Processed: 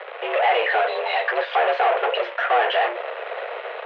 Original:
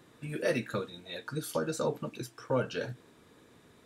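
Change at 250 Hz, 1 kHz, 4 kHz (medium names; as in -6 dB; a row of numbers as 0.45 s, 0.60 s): no reading, +22.5 dB, +15.5 dB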